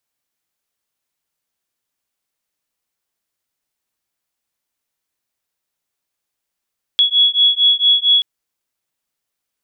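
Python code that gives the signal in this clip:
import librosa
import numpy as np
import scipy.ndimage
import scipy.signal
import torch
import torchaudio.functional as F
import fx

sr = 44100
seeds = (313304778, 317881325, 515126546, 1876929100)

y = fx.two_tone_beats(sr, length_s=1.23, hz=3360.0, beat_hz=4.4, level_db=-13.5)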